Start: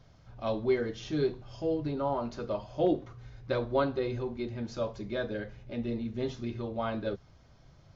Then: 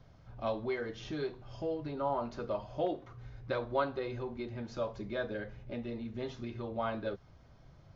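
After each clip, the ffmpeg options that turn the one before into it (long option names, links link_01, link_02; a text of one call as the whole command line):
ffmpeg -i in.wav -filter_complex "[0:a]acrossover=split=580|1200[link_01][link_02][link_03];[link_01]acompressor=threshold=-38dB:ratio=6[link_04];[link_03]highshelf=frequency=3800:gain=-8.5[link_05];[link_04][link_02][link_05]amix=inputs=3:normalize=0" out.wav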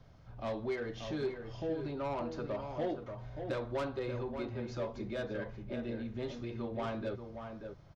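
ffmpeg -i in.wav -filter_complex "[0:a]acrossover=split=430[link_01][link_02];[link_02]asoftclip=type=tanh:threshold=-35.5dB[link_03];[link_01][link_03]amix=inputs=2:normalize=0,asplit=2[link_04][link_05];[link_05]adelay=583.1,volume=-7dB,highshelf=frequency=4000:gain=-13.1[link_06];[link_04][link_06]amix=inputs=2:normalize=0" out.wav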